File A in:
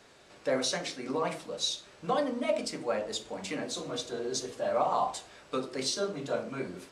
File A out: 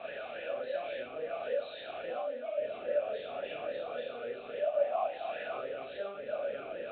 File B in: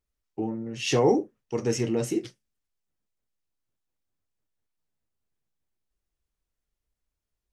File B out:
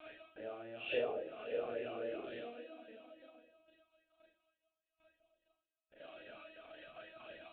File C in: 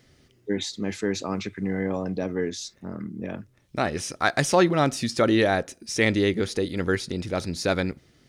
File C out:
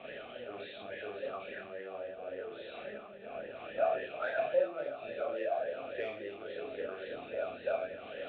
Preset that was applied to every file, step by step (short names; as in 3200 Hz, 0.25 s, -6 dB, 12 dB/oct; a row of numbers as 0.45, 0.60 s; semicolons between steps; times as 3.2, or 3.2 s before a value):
zero-crossing step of -23.5 dBFS; notch 980 Hz, Q 8.6; on a send: diffused feedback echo 0.523 s, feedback 48%, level -14.5 dB; on the sum: LPC vocoder at 8 kHz pitch kept; soft clip -4.5 dBFS; Schroeder reverb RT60 0.49 s, combs from 26 ms, DRR -4 dB; compressor, threshold -15 dBFS; vowel sweep a-e 3.6 Hz; gain -4.5 dB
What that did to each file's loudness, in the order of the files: -4.0, -16.5, -12.5 LU